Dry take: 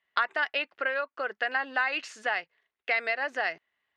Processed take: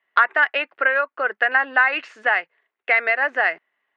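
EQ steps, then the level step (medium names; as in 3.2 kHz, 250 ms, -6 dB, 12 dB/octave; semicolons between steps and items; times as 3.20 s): treble shelf 6.4 kHz -5 dB; dynamic bell 1.7 kHz, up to +5 dB, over -37 dBFS, Q 1; three-band isolator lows -16 dB, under 220 Hz, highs -16 dB, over 2.9 kHz; +7.5 dB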